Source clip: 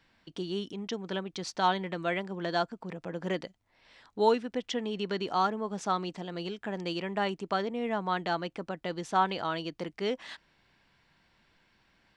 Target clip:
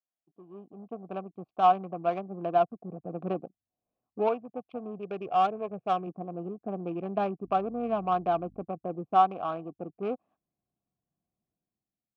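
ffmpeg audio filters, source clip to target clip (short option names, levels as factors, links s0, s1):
-filter_complex "[0:a]afwtdn=0.0112,adynamicsmooth=sensitivity=1.5:basefreq=550,asettb=1/sr,asplit=3[s0][s1][s2];[s0]atrim=end=4.984[s3];[s1]atrim=start=4.98:end=6.07,asetpts=PTS-STARTPTS,afade=t=in:d=0.004:c=qsin,afade=t=out:st=1.086:d=0.004:c=qsin,equalizer=f=125:t=o:w=1:g=4,equalizer=f=250:t=o:w=1:g=-8,equalizer=f=500:t=o:w=1:g=5,equalizer=f=1000:t=o:w=1:g=-8,equalizer=f=2000:t=o:w=1:g=4,equalizer=f=8000:t=o:w=1:g=10[s4];[s2]atrim=start=6.066[s5];[s3][s4]acrossfade=d=0.004:c1=hsin:c2=qsin[s6];[s6][s5]acrossfade=d=0.004:c1=qsin:c2=hsin,dynaudnorm=f=150:g=9:m=4.47,asettb=1/sr,asplit=3[s7][s8][s9];[s7]atrim=end=7.444[s10];[s8]atrim=start=7.44:end=8.63,asetpts=PTS-STARTPTS,afade=t=in:d=0.004:c=qsin,afade=t=out:st=1.186:d=0.004:c=qsin,aeval=exprs='val(0)+0.00891*(sin(2*PI*50*n/s)+sin(2*PI*2*50*n/s)/2+sin(2*PI*3*50*n/s)/3+sin(2*PI*4*50*n/s)/4+sin(2*PI*5*50*n/s)/5)':c=same[s11];[s9]atrim=start=8.626[s12];[s10][s11]acrossfade=d=0.004:c1=hsin:c2=qsin[s13];[s13][s12]acrossfade=d=0.004:c1=qsin:c2=hsin,asubboost=boost=10:cutoff=250,asplit=3[s14][s15][s16];[s14]bandpass=f=730:t=q:w=8,volume=1[s17];[s15]bandpass=f=1090:t=q:w=8,volume=0.501[s18];[s16]bandpass=f=2440:t=q:w=8,volume=0.355[s19];[s17][s18][s19]amix=inputs=3:normalize=0,volume=1.19"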